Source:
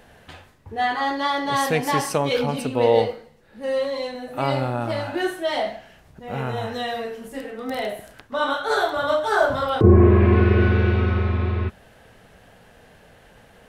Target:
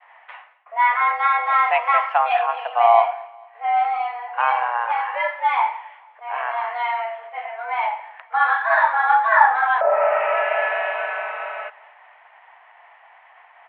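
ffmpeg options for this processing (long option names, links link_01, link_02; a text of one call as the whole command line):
ffmpeg -i in.wav -af "agate=range=-33dB:threshold=-48dB:ratio=3:detection=peak,aecho=1:1:220|440|660:0.075|0.03|0.012,highpass=frequency=460:width_type=q:width=0.5412,highpass=frequency=460:width_type=q:width=1.307,lowpass=frequency=2400:width_type=q:width=0.5176,lowpass=frequency=2400:width_type=q:width=0.7071,lowpass=frequency=2400:width_type=q:width=1.932,afreqshift=230,volume=5.5dB" out.wav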